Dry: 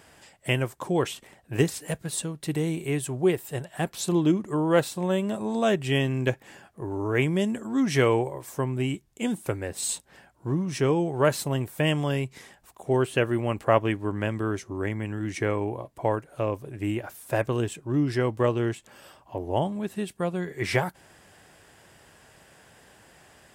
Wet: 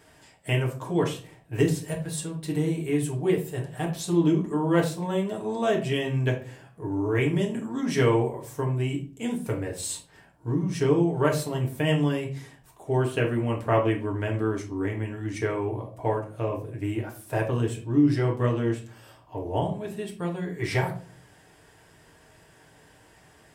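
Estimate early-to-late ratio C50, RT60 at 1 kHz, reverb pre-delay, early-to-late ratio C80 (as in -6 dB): 10.0 dB, 0.35 s, 4 ms, 15.5 dB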